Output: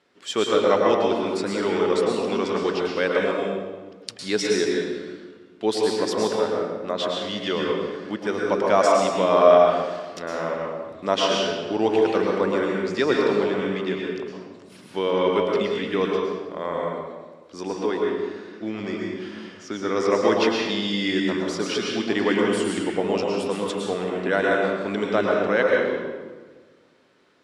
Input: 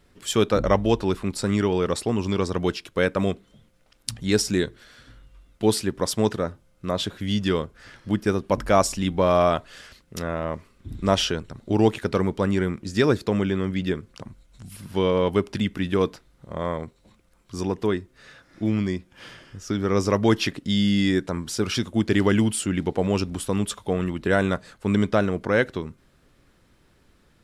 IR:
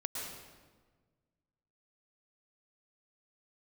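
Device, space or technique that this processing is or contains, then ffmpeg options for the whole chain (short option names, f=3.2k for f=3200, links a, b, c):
supermarket ceiling speaker: -filter_complex "[0:a]highpass=320,lowpass=5.5k[a];[1:a]atrim=start_sample=2205[b];[a][b]afir=irnorm=-1:irlink=0,volume=1.5dB"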